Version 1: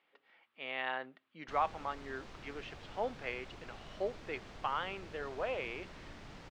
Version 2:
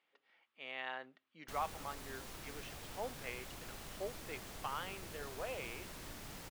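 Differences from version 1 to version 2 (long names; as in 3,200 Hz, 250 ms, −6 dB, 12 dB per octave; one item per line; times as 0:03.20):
speech −7.0 dB
master: remove high-frequency loss of the air 150 metres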